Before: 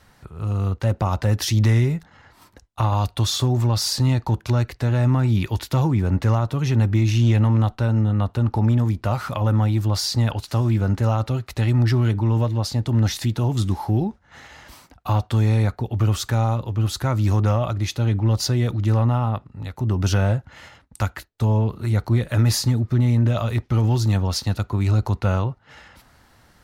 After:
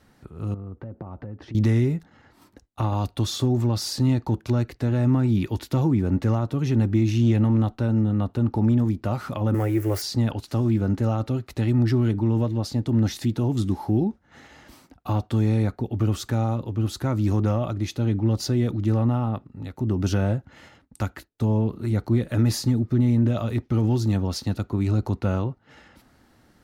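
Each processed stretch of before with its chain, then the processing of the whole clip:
0.54–1.55 s: low-pass 1.3 kHz + compression 5:1, threshold -31 dBFS
9.54–10.02 s: zero-crossing glitches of -21.5 dBFS + FFT filter 100 Hz 0 dB, 190 Hz -17 dB, 400 Hz +11 dB, 690 Hz +3 dB, 1 kHz -1 dB, 2 kHz +10 dB, 3.9 kHz -11 dB, 5.5 kHz -5 dB, 12 kHz +1 dB
whole clip: peaking EQ 280 Hz +10 dB 1.5 oct; band-stop 1 kHz, Q 19; trim -6.5 dB

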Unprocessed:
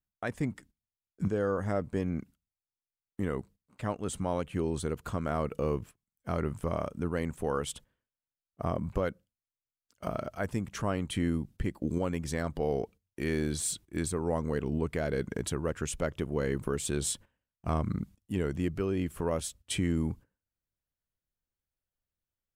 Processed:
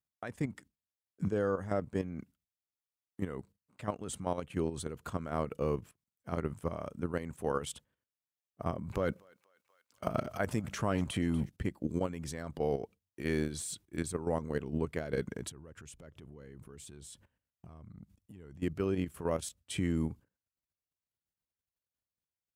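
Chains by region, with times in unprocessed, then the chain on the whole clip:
8.87–11.50 s: transient shaper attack +4 dB, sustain +12 dB + thinning echo 241 ms, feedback 69%, high-pass 870 Hz, level -20.5 dB
15.49–18.62 s: bass shelf 130 Hz +8 dB + compression 8:1, threshold -41 dBFS
whole clip: level held to a coarse grid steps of 10 dB; high-pass 66 Hz

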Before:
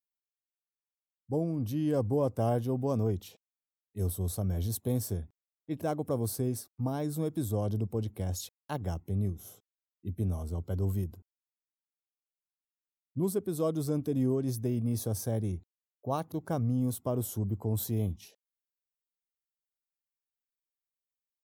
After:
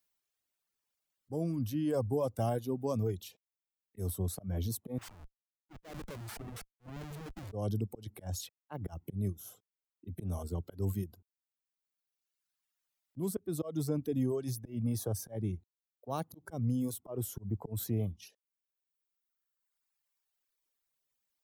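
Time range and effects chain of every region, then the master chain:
4.98–7.52 s: level held to a coarse grid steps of 22 dB + Schmitt trigger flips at -46 dBFS
whole clip: slow attack 172 ms; reverb removal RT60 1.8 s; three bands compressed up and down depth 40%

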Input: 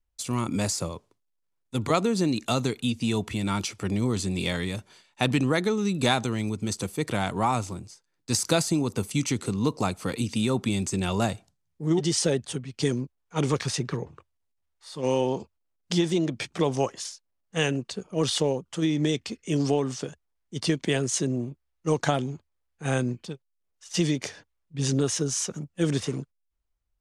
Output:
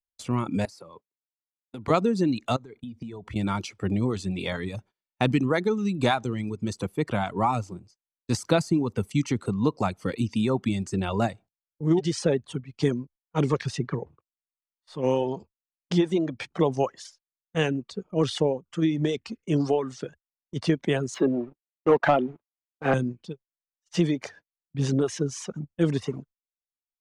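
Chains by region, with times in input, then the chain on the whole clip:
0.65–1.88 s: high-pass 150 Hz + peaking EQ 6.9 kHz -8 dB 0.49 oct + compression 8:1, threshold -36 dBFS
2.56–3.36 s: treble shelf 2.4 kHz -7.5 dB + compression 20:1, threshold -33 dBFS + band-stop 2.7 kHz, Q 11
21.14–22.94 s: three-band isolator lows -16 dB, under 250 Hz, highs -23 dB, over 3.2 kHz + waveshaping leveller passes 2
whole clip: gate -44 dBFS, range -26 dB; low-pass 1.8 kHz 6 dB/octave; reverb removal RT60 1.2 s; trim +2.5 dB

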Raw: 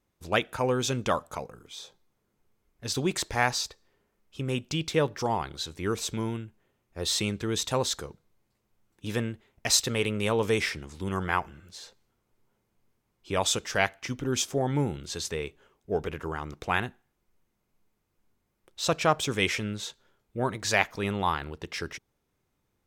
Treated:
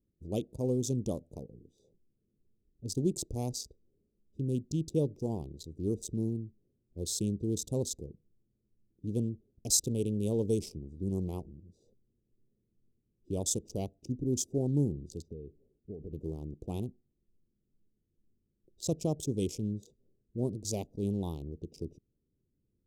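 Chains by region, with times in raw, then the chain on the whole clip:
15.22–16.13 s: compression, threshold -34 dBFS + distance through air 210 m
whole clip: local Wiener filter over 41 samples; Chebyshev band-stop 350–7000 Hz, order 2

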